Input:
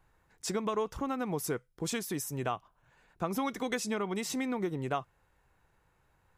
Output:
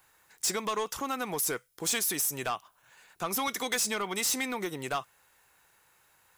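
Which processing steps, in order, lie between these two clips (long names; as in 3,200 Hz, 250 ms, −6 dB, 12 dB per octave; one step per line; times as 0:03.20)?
de-essing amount 75%
spectral tilt +4 dB per octave
soft clipping −28 dBFS, distortion −12 dB
level +5 dB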